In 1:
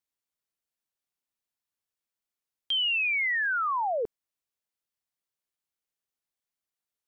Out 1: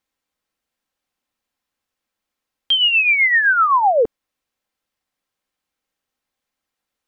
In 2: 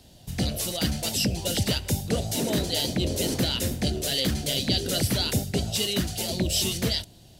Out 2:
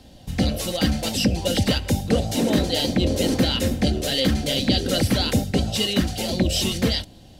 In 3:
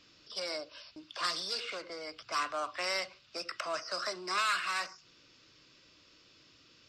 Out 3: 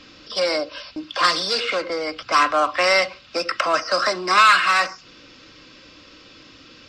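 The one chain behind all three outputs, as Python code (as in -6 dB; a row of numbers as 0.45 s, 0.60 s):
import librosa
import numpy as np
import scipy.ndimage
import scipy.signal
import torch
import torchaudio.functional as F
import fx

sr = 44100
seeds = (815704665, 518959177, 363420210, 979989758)

y = fx.high_shelf(x, sr, hz=5000.0, db=-11.0)
y = y + 0.36 * np.pad(y, (int(3.8 * sr / 1000.0), 0))[:len(y)]
y = y * 10.0 ** (-22 / 20.0) / np.sqrt(np.mean(np.square(y)))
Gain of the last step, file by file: +13.0 dB, +6.0 dB, +17.5 dB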